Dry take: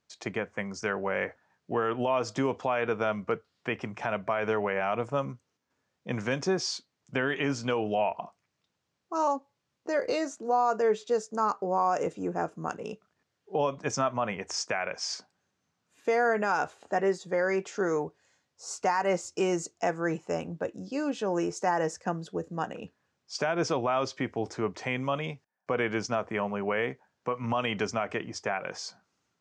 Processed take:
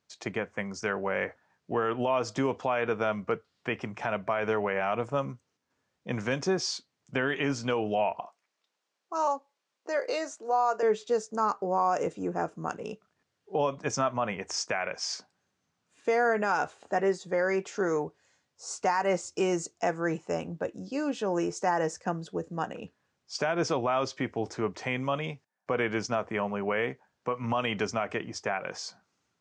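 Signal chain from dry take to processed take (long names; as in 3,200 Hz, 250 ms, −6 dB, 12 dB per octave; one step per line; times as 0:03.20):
0:08.20–0:10.83: high-pass filter 440 Hz 12 dB per octave
Ogg Vorbis 64 kbit/s 22,050 Hz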